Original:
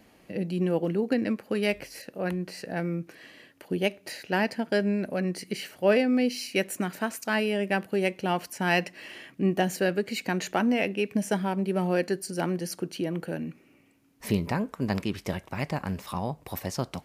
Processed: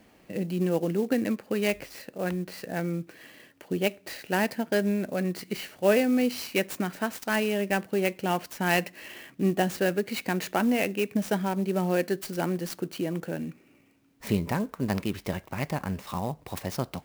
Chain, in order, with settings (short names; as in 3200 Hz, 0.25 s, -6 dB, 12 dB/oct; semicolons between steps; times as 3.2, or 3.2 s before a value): clock jitter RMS 0.026 ms